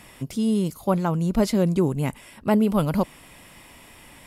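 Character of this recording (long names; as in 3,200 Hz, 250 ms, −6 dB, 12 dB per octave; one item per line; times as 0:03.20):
background noise floor −49 dBFS
spectral slope −7.0 dB per octave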